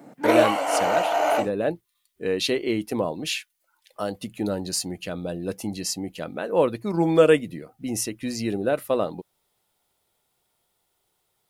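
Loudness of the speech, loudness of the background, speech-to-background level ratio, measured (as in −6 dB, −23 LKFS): −26.0 LKFS, −22.0 LKFS, −4.0 dB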